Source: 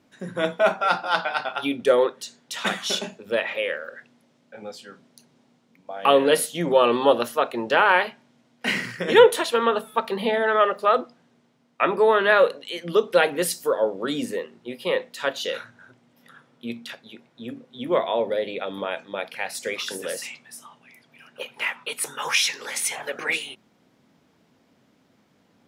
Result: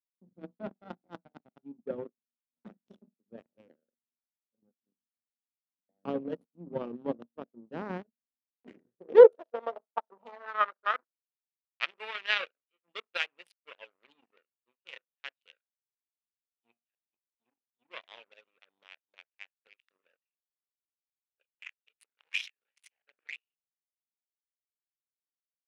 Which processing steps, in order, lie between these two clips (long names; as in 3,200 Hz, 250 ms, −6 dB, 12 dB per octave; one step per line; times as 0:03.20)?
adaptive Wiener filter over 41 samples
power curve on the samples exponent 2
band-pass filter sweep 230 Hz → 2,600 Hz, 0:08.21–0:11.64
level +4.5 dB